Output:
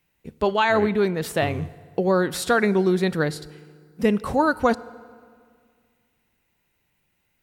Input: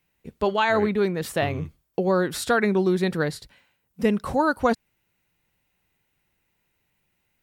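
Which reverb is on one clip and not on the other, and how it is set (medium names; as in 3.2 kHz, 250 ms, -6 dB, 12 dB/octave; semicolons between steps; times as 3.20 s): FDN reverb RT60 2 s, low-frequency decay 1.2×, high-frequency decay 0.75×, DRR 18 dB; trim +1.5 dB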